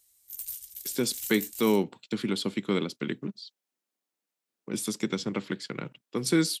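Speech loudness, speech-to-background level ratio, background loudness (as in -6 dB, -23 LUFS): -30.0 LUFS, 7.5 dB, -37.5 LUFS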